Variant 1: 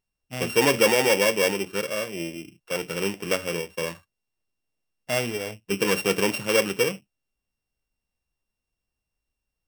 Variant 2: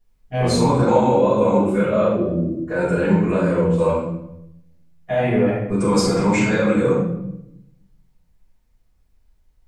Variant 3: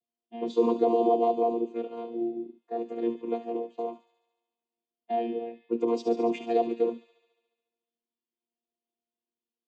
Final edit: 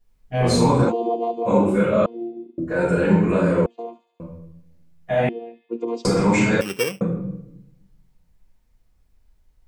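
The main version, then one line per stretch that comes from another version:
2
0.9–1.48 from 3, crossfade 0.06 s
2.06–2.58 from 3
3.66–4.2 from 3
5.29–6.05 from 3
6.61–7.01 from 1

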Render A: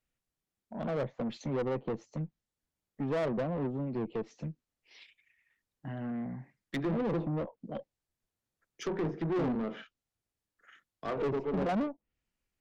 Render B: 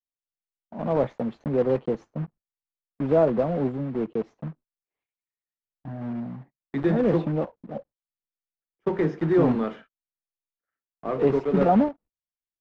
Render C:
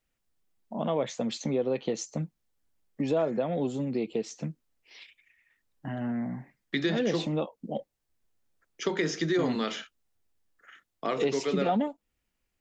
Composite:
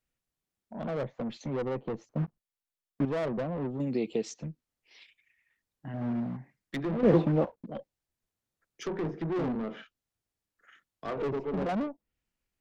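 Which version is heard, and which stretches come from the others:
A
2.09–3.05 from B
3.8–4.34 from C
5.94–6.37 from B
7.03–7.66 from B

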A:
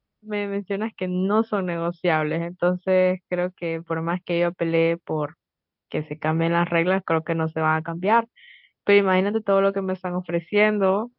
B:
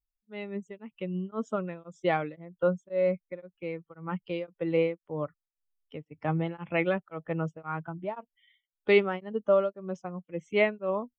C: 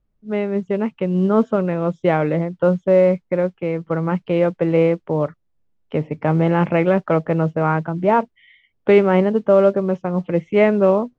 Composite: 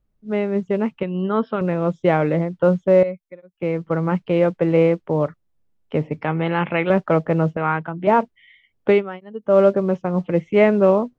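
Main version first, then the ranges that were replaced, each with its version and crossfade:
C
1.03–1.61 from A
3.03–3.6 from B
6.21–6.9 from A
7.57–8.07 from A
8.95–9.5 from B, crossfade 0.16 s

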